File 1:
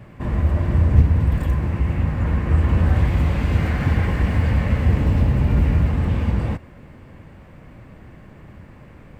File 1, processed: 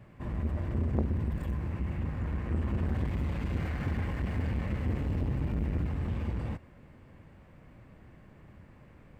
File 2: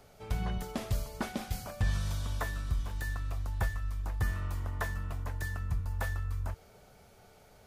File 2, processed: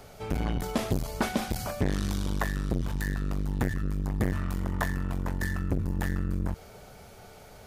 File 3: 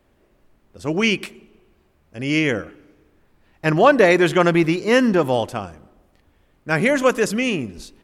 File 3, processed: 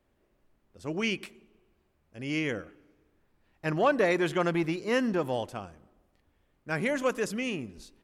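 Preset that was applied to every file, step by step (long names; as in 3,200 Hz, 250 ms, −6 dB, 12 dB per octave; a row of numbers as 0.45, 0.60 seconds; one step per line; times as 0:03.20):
saturating transformer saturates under 380 Hz
normalise the peak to −12 dBFS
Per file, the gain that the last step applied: −11.0, +9.0, −11.0 decibels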